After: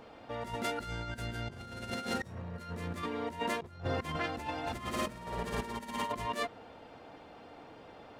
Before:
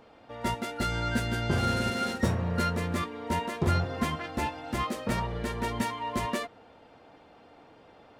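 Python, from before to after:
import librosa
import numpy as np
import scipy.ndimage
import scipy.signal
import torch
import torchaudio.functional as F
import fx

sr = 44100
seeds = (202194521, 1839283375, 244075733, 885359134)

y = fx.room_flutter(x, sr, wall_m=9.7, rt60_s=1.0, at=(4.66, 6.11), fade=0.02)
y = fx.over_compress(y, sr, threshold_db=-34.0, ratio=-0.5)
y = y * 10.0 ** (-2.5 / 20.0)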